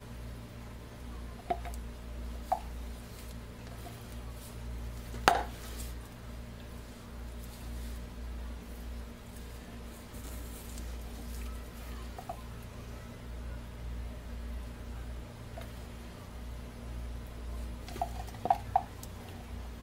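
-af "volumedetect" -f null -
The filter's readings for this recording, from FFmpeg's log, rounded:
mean_volume: -39.7 dB
max_volume: -7.5 dB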